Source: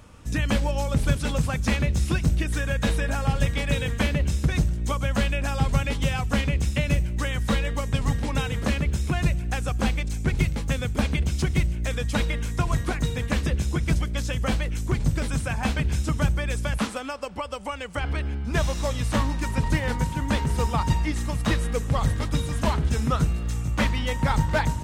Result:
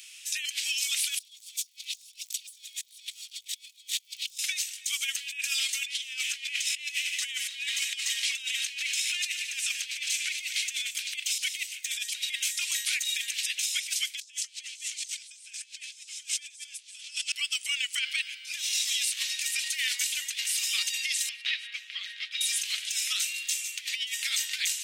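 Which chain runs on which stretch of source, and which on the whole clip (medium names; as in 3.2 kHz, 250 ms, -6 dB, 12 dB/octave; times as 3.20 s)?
1.20–4.38 s: comb filter that takes the minimum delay 0.88 ms + resonant high shelf 2.6 kHz +11 dB, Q 1.5 + integer overflow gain 12.5 dB
5.84–10.91 s: frequency weighting A + multi-head delay 74 ms, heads second and third, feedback 64%, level -15.5 dB
14.21–17.32 s: frequency weighting ITU-R 468 + feedback delay 205 ms, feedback 35%, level -9 dB
21.29–22.41 s: high-pass 1.2 kHz 24 dB/octave + distance through air 340 m
whole clip: steep high-pass 2.4 kHz 36 dB/octave; compressor with a negative ratio -41 dBFS, ratio -0.5; trim +7.5 dB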